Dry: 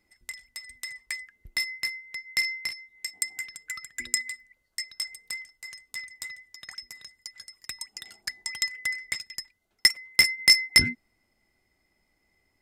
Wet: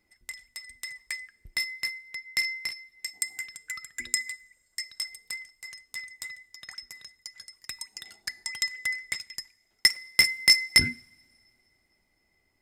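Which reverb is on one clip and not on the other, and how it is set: two-slope reverb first 0.62 s, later 2.9 s, from -19 dB, DRR 19 dB; gain -1 dB

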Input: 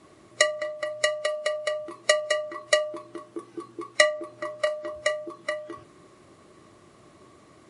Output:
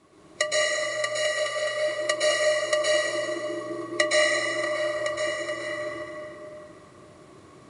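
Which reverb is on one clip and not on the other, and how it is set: plate-style reverb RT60 2.8 s, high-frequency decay 0.7×, pre-delay 0.105 s, DRR -7.5 dB; gain -5 dB

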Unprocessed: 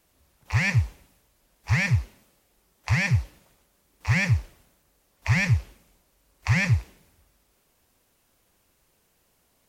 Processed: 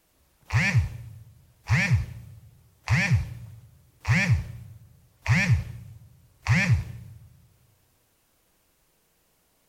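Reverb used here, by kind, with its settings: shoebox room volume 3400 m³, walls furnished, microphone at 0.58 m

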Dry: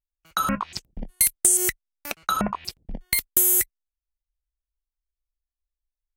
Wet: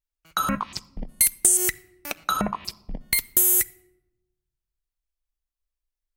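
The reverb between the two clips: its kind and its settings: shoebox room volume 3500 m³, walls furnished, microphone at 0.46 m

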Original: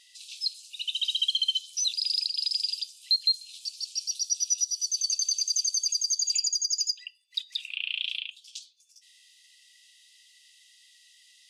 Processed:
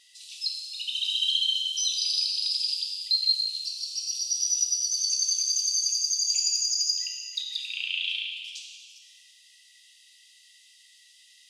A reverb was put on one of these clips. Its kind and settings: plate-style reverb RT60 1.9 s, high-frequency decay 1×, DRR -0.5 dB; gain -1.5 dB

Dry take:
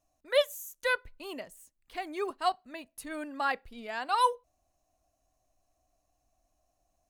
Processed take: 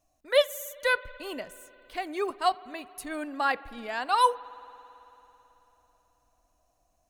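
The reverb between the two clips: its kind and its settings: spring tank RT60 3.6 s, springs 54 ms, chirp 35 ms, DRR 18.5 dB; gain +3.5 dB

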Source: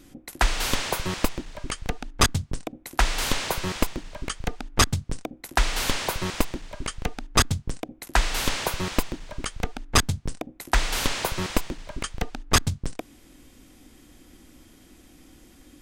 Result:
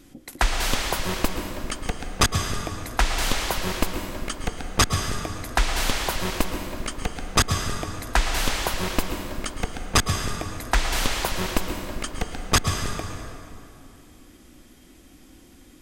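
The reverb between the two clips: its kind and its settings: plate-style reverb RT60 2.6 s, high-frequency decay 0.65×, pre-delay 0.1 s, DRR 4.5 dB

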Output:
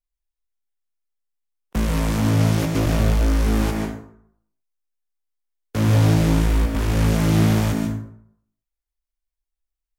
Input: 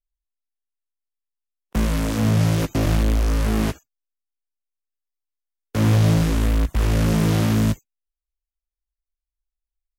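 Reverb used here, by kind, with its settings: plate-style reverb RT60 0.68 s, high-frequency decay 0.55×, pre-delay 0.12 s, DRR 1.5 dB; gain -1 dB

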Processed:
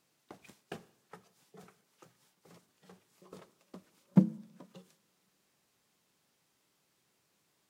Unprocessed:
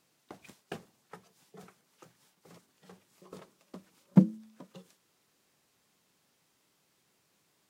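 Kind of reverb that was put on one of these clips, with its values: two-slope reverb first 0.84 s, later 2.9 s, from -26 dB, DRR 18 dB; gain -3 dB

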